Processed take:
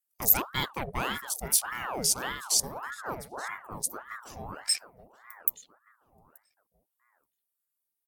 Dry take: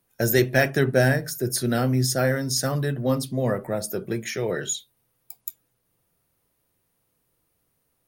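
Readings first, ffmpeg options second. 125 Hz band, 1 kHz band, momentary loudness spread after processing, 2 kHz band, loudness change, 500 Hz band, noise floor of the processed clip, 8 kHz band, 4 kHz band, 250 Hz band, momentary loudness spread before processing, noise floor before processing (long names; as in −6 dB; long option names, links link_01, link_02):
−19.5 dB, −2.0 dB, 15 LU, −9.0 dB, −5.0 dB, −17.5 dB, −84 dBFS, +1.5 dB, −1.0 dB, −17.0 dB, 10 LU, −73 dBFS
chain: -filter_complex "[0:a]crystalizer=i=6.5:c=0,afwtdn=0.0891,asplit=2[link_01][link_02];[link_02]adelay=879,lowpass=frequency=1500:poles=1,volume=-11.5dB,asplit=2[link_03][link_04];[link_04]adelay=879,lowpass=frequency=1500:poles=1,volume=0.33,asplit=2[link_05][link_06];[link_06]adelay=879,lowpass=frequency=1500:poles=1,volume=0.33[link_07];[link_03][link_05][link_07]amix=inputs=3:normalize=0[link_08];[link_01][link_08]amix=inputs=2:normalize=0,aeval=exprs='val(0)*sin(2*PI*930*n/s+930*0.7/1.7*sin(2*PI*1.7*n/s))':channel_layout=same,volume=-11.5dB"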